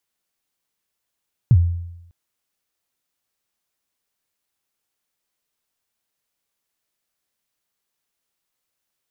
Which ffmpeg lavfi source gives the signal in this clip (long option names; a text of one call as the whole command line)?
ffmpeg -f lavfi -i "aevalsrc='0.473*pow(10,-3*t/0.87)*sin(2*PI*(140*0.054/log(86/140)*(exp(log(86/140)*min(t,0.054)/0.054)-1)+86*max(t-0.054,0)))':duration=0.6:sample_rate=44100" out.wav